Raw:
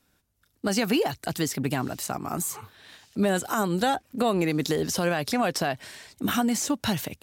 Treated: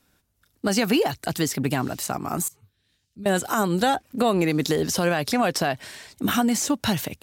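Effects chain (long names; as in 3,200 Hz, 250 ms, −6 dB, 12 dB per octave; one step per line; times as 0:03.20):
0:02.48–0:03.26: guitar amp tone stack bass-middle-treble 10-0-1
level +3 dB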